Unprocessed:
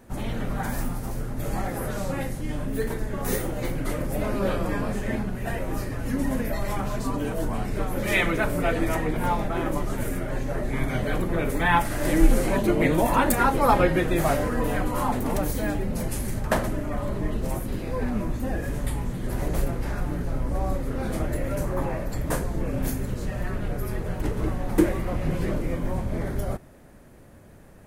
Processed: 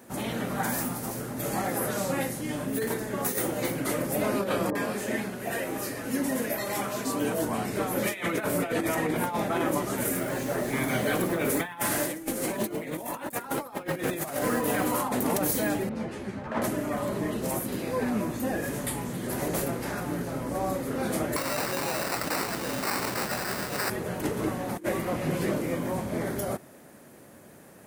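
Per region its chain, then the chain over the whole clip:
0:04.70–0:07.19: bass and treble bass −6 dB, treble 0 dB + multiband delay without the direct sound lows, highs 50 ms, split 970 Hz
0:10.05–0:14.99: high-shelf EQ 7,800 Hz +4 dB + feedback echo at a low word length 102 ms, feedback 35%, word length 6 bits, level −14 dB
0:15.89–0:16.62: low-pass filter 2,700 Hz + string-ensemble chorus
0:21.36–0:23.90: first-order pre-emphasis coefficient 0.9 + sample-rate reduction 3,300 Hz + envelope flattener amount 100%
whole clip: high-pass filter 180 Hz 12 dB per octave; high-shelf EQ 5,600 Hz +7 dB; compressor whose output falls as the input rises −27 dBFS, ratio −0.5

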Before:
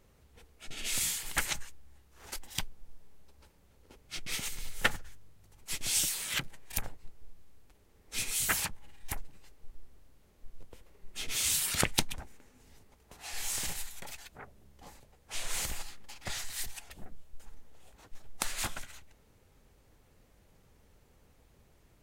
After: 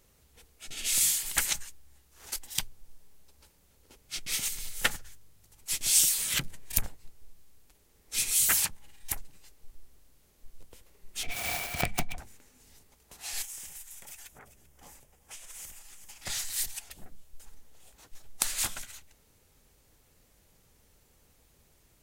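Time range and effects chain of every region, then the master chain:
0:06.18–0:06.86: low-shelf EQ 390 Hz +8 dB + notch filter 810 Hz, Q 22
0:11.23–0:12.18: phase distortion by the signal itself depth 0.77 ms + bass and treble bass +6 dB, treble −13 dB + hollow resonant body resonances 710/2,300 Hz, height 17 dB
0:13.42–0:16.22: parametric band 4,200 Hz −9.5 dB 0.41 octaves + single-tap delay 388 ms −20 dB + downward compressor 8 to 1, threshold −45 dBFS
whole clip: high-shelf EQ 3,500 Hz +11.5 dB; hum removal 102.7 Hz, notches 2; level −2.5 dB

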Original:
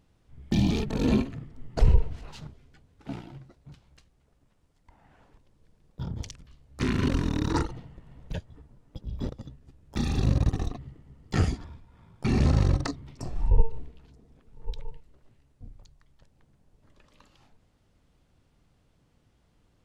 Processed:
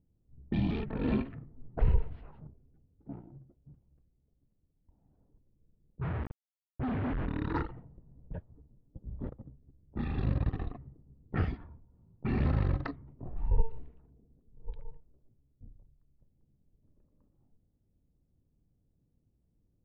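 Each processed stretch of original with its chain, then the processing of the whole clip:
0:06.01–0:07.27: expanding power law on the bin magnitudes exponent 3.6 + log-companded quantiser 2 bits
whole clip: low-pass that shuts in the quiet parts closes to 340 Hz, open at −19 dBFS; Bessel low-pass filter 2,400 Hz, order 8; dynamic equaliser 1,700 Hz, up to +5 dB, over −50 dBFS, Q 1.1; level −6.5 dB

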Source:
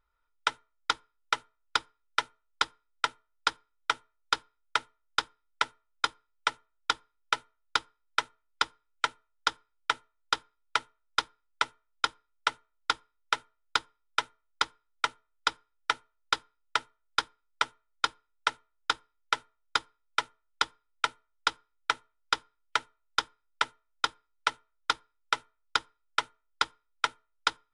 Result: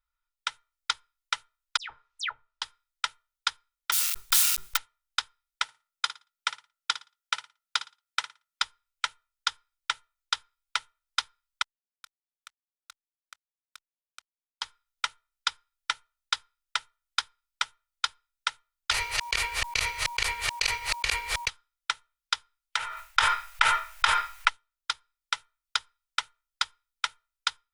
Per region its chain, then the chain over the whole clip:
0:01.77–0:02.62: high-frequency loss of the air 140 metres + all-pass dispersion lows, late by 126 ms, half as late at 2,900 Hz + multiband upward and downward compressor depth 70%
0:03.92–0:04.77: spike at every zero crossing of −17 dBFS + mains-hum notches 50/100/150/200/250/300/350/400 Hz + level that may fall only so fast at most 37 dB per second
0:05.63–0:08.62: high-pass filter 160 Hz + flutter between parallel walls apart 9.8 metres, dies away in 0.26 s
0:11.62–0:14.62: output level in coarse steps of 20 dB + power curve on the samples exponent 3 + expander for the loud parts, over −54 dBFS
0:18.91–0:21.49: delay that plays each chunk backwards 144 ms, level −9.5 dB + ring modulation 950 Hz + envelope flattener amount 100%
0:22.77–0:24.49: flat-topped bell 1,200 Hz +10 dB 2.7 octaves + level that may fall only so fast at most 31 dB per second
whole clip: guitar amp tone stack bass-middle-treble 10-0-10; automatic gain control gain up to 6 dB; level −2 dB

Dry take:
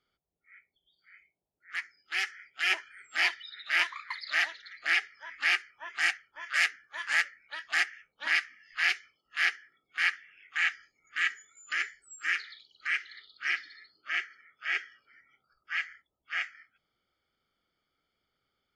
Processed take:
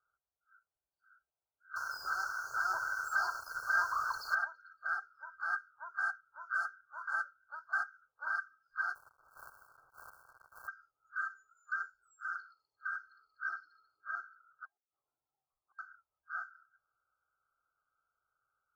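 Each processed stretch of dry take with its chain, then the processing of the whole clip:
0:01.76–0:04.35: converter with a step at zero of −27.5 dBFS + flat-topped bell 5,300 Hz +10 dB 1 octave
0:08.95–0:10.68: gap after every zero crossing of 0.26 ms + every bin compressed towards the loudest bin 4 to 1
0:14.65–0:15.79: gate with flip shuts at −29 dBFS, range −31 dB + Chebyshev low-pass with heavy ripple 1,100 Hz, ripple 6 dB
whole clip: first-order pre-emphasis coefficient 0.9; brick-wall band-stop 1,600–4,200 Hz; drawn EQ curve 130 Hz 0 dB, 200 Hz −17 dB, 510 Hz −1 dB, 1,800 Hz +10 dB, 4,700 Hz −30 dB; level +8.5 dB

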